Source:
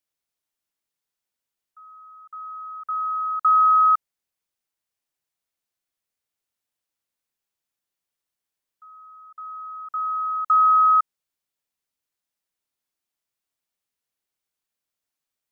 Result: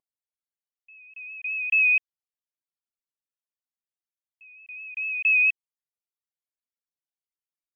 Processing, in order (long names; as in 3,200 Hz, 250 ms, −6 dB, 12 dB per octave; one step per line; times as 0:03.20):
tape wow and flutter 41 cents
spectral peaks only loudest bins 32
wrong playback speed 7.5 ips tape played at 15 ips
level −3.5 dB